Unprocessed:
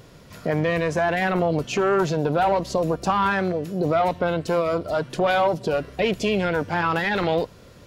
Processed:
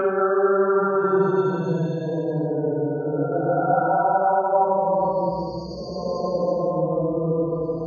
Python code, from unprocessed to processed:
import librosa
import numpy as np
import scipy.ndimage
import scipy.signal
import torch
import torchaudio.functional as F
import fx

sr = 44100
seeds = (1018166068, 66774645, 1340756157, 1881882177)

y = fx.spec_topn(x, sr, count=16)
y = fx.paulstretch(y, sr, seeds[0], factor=6.8, window_s=0.25, from_s=1.83)
y = fx.hum_notches(y, sr, base_hz=50, count=4)